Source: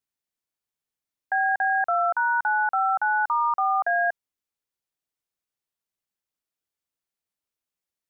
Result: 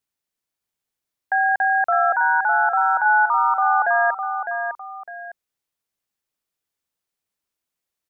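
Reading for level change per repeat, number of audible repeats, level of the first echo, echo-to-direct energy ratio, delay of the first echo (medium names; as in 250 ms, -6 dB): -9.5 dB, 2, -7.0 dB, -6.5 dB, 606 ms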